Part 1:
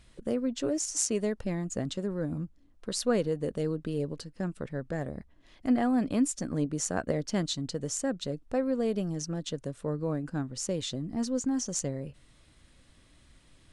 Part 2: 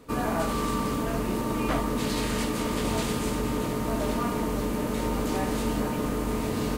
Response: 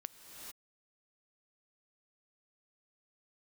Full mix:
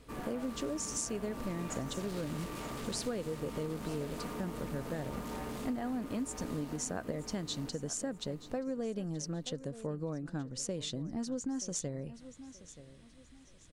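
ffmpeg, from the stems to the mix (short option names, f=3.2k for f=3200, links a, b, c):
-filter_complex "[0:a]volume=-2.5dB,asplit=2[a][b];[b]volume=-18.5dB[c];[1:a]asoftclip=type=tanh:threshold=-30dB,volume=-9dB,asplit=2[d][e];[e]volume=-4dB[f];[c][f]amix=inputs=2:normalize=0,aecho=0:1:928|1856|2784|3712|4640:1|0.32|0.102|0.0328|0.0105[g];[a][d][g]amix=inputs=3:normalize=0,acompressor=threshold=-33dB:ratio=6"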